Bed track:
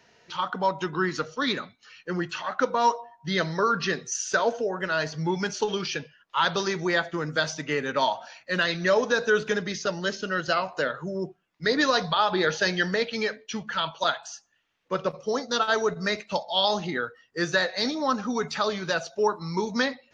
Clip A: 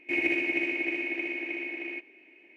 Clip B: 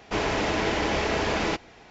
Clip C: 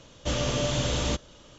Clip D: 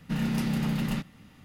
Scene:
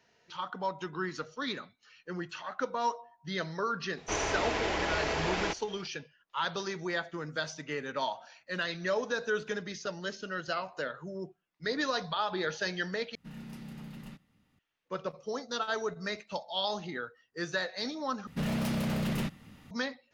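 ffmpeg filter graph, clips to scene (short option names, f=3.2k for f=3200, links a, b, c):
-filter_complex "[4:a]asplit=2[a][b];[0:a]volume=-9dB[c];[2:a]equalizer=f=190:w=0.96:g=-7[d];[b]aeval=exprs='0.0501*(abs(mod(val(0)/0.0501+3,4)-2)-1)':c=same[e];[c]asplit=3[f][g][h];[f]atrim=end=13.154[i];[a]atrim=end=1.44,asetpts=PTS-STARTPTS,volume=-17dB[j];[g]atrim=start=14.586:end=18.274[k];[e]atrim=end=1.44,asetpts=PTS-STARTPTS,volume=-0.5dB[l];[h]atrim=start=19.706[m];[d]atrim=end=1.9,asetpts=PTS-STARTPTS,volume=-5dB,afade=t=in:d=0.004:c=hsin,afade=t=out:st=1.896:d=0.004:c=hsin,adelay=175077S[n];[i][j]acrossfade=d=0.004:c1=hsin:c2=hsin[o];[o][k]acrossfade=d=0.004:c1=hsin:c2=hsin[p];[p][l]acrossfade=d=0.004:c1=hsin:c2=hsin[q];[q][m]acrossfade=d=0.004:c1=hsin:c2=hsin[r];[r][n]amix=inputs=2:normalize=0"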